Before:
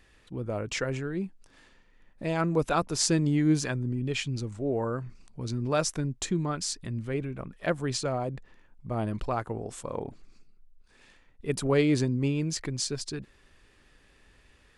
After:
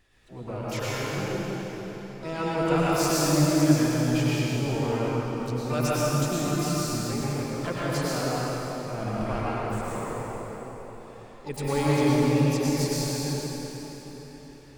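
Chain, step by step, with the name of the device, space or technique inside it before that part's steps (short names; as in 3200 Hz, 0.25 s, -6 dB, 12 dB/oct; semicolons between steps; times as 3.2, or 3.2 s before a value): shimmer-style reverb (harmoniser +12 st -8 dB; reverb RT60 4.5 s, pre-delay 93 ms, DRR -8 dB); gain -6 dB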